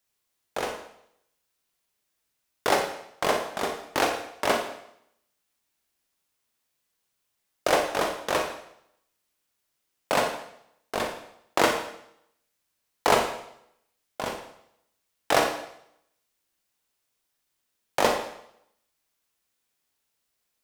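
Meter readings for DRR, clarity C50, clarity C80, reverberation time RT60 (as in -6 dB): 3.5 dB, 6.0 dB, 8.5 dB, 0.75 s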